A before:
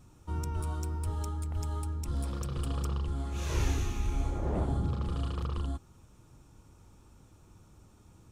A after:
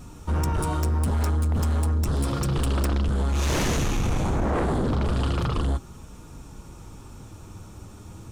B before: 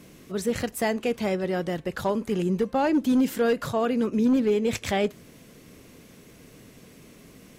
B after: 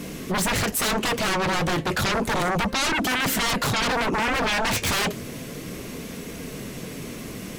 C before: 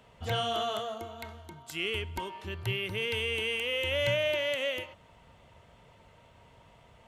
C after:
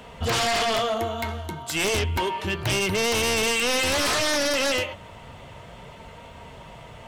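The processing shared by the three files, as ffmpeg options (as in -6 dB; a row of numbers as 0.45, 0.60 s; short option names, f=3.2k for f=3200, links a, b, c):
-af "flanger=delay=4.2:depth=6.2:regen=-56:speed=0.32:shape=sinusoidal,aeval=exprs='0.141*sin(PI/2*7.94*val(0)/0.141)':c=same,volume=-3dB"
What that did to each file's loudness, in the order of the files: +9.0, +2.5, +8.0 LU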